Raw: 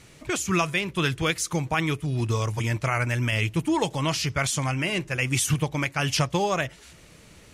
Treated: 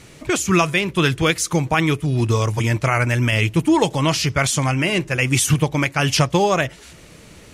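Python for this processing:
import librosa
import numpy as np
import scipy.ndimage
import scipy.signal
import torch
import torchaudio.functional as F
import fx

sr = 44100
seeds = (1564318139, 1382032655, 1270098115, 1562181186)

y = fx.peak_eq(x, sr, hz=340.0, db=2.5, octaves=2.0)
y = y * 10.0 ** (6.0 / 20.0)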